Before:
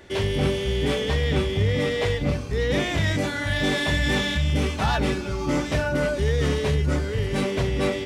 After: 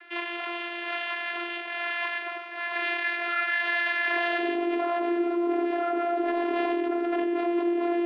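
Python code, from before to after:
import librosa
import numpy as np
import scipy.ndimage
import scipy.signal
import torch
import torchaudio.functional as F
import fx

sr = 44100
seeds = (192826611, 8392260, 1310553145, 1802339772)

p1 = fx.tracing_dist(x, sr, depth_ms=0.095)
p2 = p1 + 10.0 ** (-13.5 / 20.0) * np.pad(p1, (int(145 * sr / 1000.0), 0))[:len(p1)]
p3 = np.clip(p2, -10.0 ** (-24.5 / 20.0), 10.0 ** (-24.5 / 20.0))
p4 = p3 + fx.echo_feedback(p3, sr, ms=98, feedback_pct=57, wet_db=-11.0, dry=0)
p5 = fx.vocoder(p4, sr, bands=16, carrier='saw', carrier_hz=345.0)
p6 = fx.filter_sweep_highpass(p5, sr, from_hz=1500.0, to_hz=320.0, start_s=3.96, end_s=4.54, q=0.91)
p7 = fx.over_compress(p6, sr, threshold_db=-35.0, ratio=-0.5)
p8 = p6 + (p7 * librosa.db_to_amplitude(2.5))
y = scipy.signal.sosfilt(scipy.signal.butter(4, 2900.0, 'lowpass', fs=sr, output='sos'), p8)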